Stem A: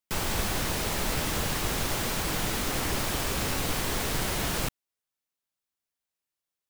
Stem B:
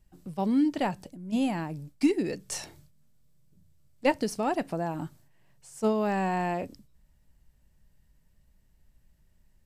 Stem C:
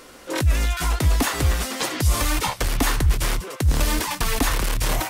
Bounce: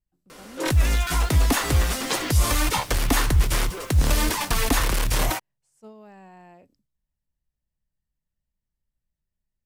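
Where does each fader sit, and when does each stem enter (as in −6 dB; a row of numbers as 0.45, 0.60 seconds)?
−14.5, −19.5, 0.0 decibels; 0.55, 0.00, 0.30 seconds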